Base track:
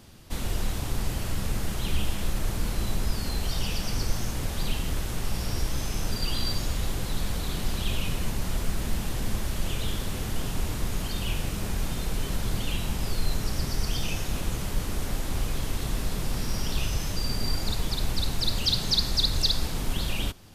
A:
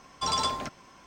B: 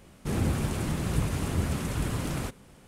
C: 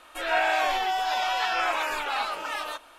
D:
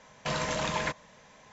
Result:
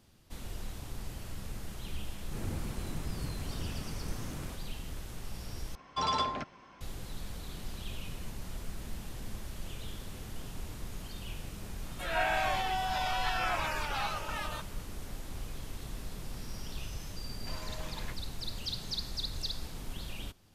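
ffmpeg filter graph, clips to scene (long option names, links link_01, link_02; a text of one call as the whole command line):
ffmpeg -i bed.wav -i cue0.wav -i cue1.wav -i cue2.wav -i cue3.wav -filter_complex "[0:a]volume=-12.5dB[link_01];[1:a]lowpass=3600[link_02];[4:a]asplit=2[link_03][link_04];[link_04]adelay=9.6,afreqshift=-1.4[link_05];[link_03][link_05]amix=inputs=2:normalize=1[link_06];[link_01]asplit=2[link_07][link_08];[link_07]atrim=end=5.754[link_09];[link_02]atrim=end=1.06,asetpts=PTS-STARTPTS,volume=-1.5dB[link_10];[link_08]atrim=start=6.806[link_11];[2:a]atrim=end=2.87,asetpts=PTS-STARTPTS,volume=-12dB,afade=type=in:duration=0.004:curve=hsin,afade=type=out:start_time=2.866:duration=0.004:curve=hsin,adelay=2060[link_12];[3:a]atrim=end=2.98,asetpts=PTS-STARTPTS,volume=-6.5dB,afade=type=in:duration=0.004:curve=hsin,afade=type=out:start_time=2.976:duration=0.004:curve=hsin,adelay=11840[link_13];[link_06]atrim=end=1.52,asetpts=PTS-STARTPTS,volume=-12dB,afade=type=in:duration=0.004:curve=hsin,afade=type=out:start_time=1.516:duration=0.004:curve=hsin,adelay=17210[link_14];[link_09][link_10]acrossfade=duration=0.004:curve1=hsin:curve2=hsin[link_15];[link_15][link_11]acrossfade=duration=0.004:curve1=hsin:curve2=hsin[link_16];[link_16][link_12][link_13][link_14]amix=inputs=4:normalize=0" out.wav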